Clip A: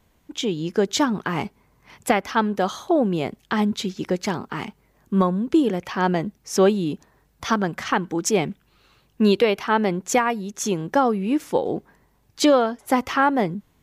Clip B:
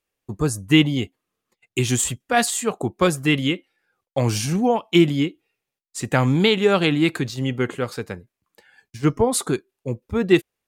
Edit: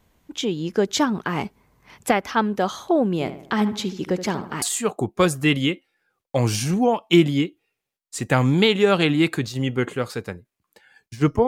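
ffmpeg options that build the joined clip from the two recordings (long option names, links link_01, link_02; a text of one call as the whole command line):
ffmpeg -i cue0.wav -i cue1.wav -filter_complex "[0:a]asettb=1/sr,asplit=3[link_01][link_02][link_03];[link_01]atrim=end=3.134[link_04];[link_02]atrim=start=3.13:end=4.62,asetpts=PTS-STARTPTS,afade=type=in:duration=0.004:curve=qsin,afade=type=out:start_time=1.486:duration=0.004:curve=qsin,asplit=2[link_05][link_06];[link_06]adelay=75,lowpass=frequency=2200:poles=1,volume=-11dB,asplit=2[link_07][link_08];[link_08]adelay=75,lowpass=frequency=2200:poles=1,volume=0.49,asplit=2[link_09][link_10];[link_10]adelay=75,lowpass=frequency=2200:poles=1,volume=0.49,asplit=2[link_11][link_12];[link_12]adelay=75,lowpass=frequency=2200:poles=1,volume=0.49,asplit=2[link_13][link_14];[link_14]adelay=75,lowpass=frequency=2200:poles=1,volume=0.49[link_15];[link_05][link_07][link_09][link_11][link_13][link_15]amix=inputs=6:normalize=0,atrim=end_sample=65709[link_16];[link_03]atrim=start=4.616[link_17];[link_04][link_16]acrossfade=duration=0.004:curve1=hsin:curve2=qsin[link_18];[link_18][link_17]acrossfade=duration=0.004:curve1=qsin:curve2=hsin,apad=whole_dur=11.47,atrim=end=11.47,atrim=end=4.622[link_19];[1:a]atrim=start=2.438:end=9.29[link_20];[link_19][link_20]acrossfade=duration=0.004:curve1=hsin:curve2=hsin" out.wav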